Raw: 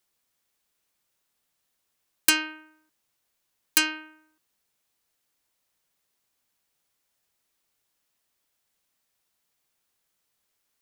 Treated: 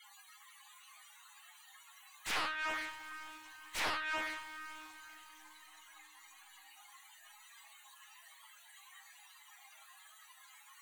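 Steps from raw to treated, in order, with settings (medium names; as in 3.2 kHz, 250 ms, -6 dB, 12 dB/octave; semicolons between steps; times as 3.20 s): spectral gate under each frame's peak -20 dB strong; high-pass 620 Hz 24 dB/octave; band-stop 5.2 kHz, Q 8.2; compression 2:1, threshold -25 dBFS, peak gain reduction 6 dB; valve stage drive 23 dB, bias 0.3; loudest bins only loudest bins 64; inverted gate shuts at -34 dBFS, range -26 dB; overdrive pedal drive 34 dB, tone 3.2 kHz, clips at -32.5 dBFS; echo that smears into a reverb 514 ms, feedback 41%, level -11 dB; reverberation RT60 0.35 s, pre-delay 4 ms, DRR -2 dB; loudspeaker Doppler distortion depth 0.88 ms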